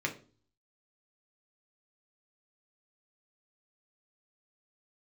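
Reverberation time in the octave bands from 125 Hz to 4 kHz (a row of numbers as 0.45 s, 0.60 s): 0.70 s, 0.55 s, 0.45 s, 0.35 s, 0.30 s, 0.35 s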